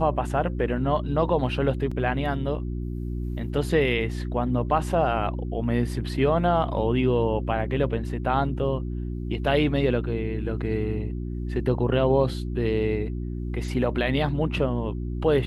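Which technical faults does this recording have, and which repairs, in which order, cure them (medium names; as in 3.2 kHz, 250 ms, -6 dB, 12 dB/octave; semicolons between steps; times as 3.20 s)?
hum 60 Hz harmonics 6 -30 dBFS
1.91 s: dropout 4.9 ms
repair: de-hum 60 Hz, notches 6; interpolate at 1.91 s, 4.9 ms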